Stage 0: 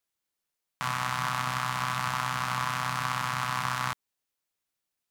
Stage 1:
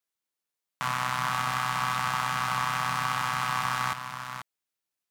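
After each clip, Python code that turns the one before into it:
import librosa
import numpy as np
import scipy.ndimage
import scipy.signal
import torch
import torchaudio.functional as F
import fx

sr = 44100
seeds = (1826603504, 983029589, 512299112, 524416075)

y = fx.low_shelf(x, sr, hz=83.0, db=-10.5)
y = fx.leveller(y, sr, passes=1)
y = y + 10.0 ** (-8.5 / 20.0) * np.pad(y, (int(487 * sr / 1000.0), 0))[:len(y)]
y = F.gain(torch.from_numpy(y), -1.5).numpy()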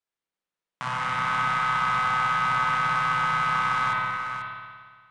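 y = scipy.signal.sosfilt(scipy.signal.ellip(4, 1.0, 40, 9600.0, 'lowpass', fs=sr, output='sos'), x)
y = fx.high_shelf(y, sr, hz=4000.0, db=-9.0)
y = fx.rev_spring(y, sr, rt60_s=1.7, pass_ms=(57,), chirp_ms=30, drr_db=-2.5)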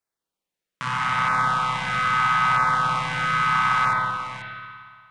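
y = fx.filter_lfo_notch(x, sr, shape='saw_down', hz=0.78, low_hz=320.0, high_hz=3500.0, q=1.4)
y = F.gain(torch.from_numpy(y), 4.5).numpy()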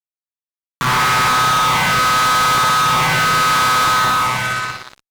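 y = fx.fuzz(x, sr, gain_db=35.0, gate_db=-41.0)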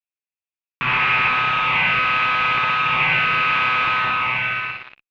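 y = fx.ladder_lowpass(x, sr, hz=2700.0, resonance_pct=80)
y = F.gain(torch.from_numpy(y), 4.0).numpy()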